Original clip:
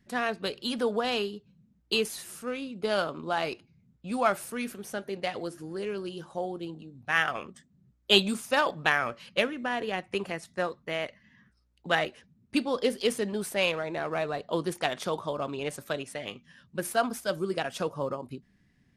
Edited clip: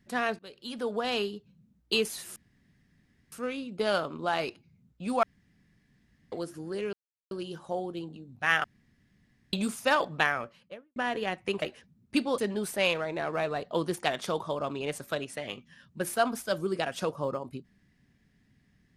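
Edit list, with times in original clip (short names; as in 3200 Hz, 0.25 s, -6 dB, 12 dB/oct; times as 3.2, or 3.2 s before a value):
0.39–1.23 fade in, from -21.5 dB
2.36 insert room tone 0.96 s
4.27–5.36 room tone
5.97 insert silence 0.38 s
7.3–8.19 room tone
8.77–9.62 studio fade out
10.28–12.02 cut
12.78–13.16 cut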